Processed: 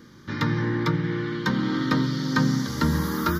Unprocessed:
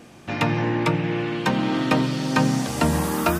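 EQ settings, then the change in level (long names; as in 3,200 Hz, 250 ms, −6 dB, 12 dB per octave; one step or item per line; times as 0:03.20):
phaser with its sweep stopped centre 2,600 Hz, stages 6
0.0 dB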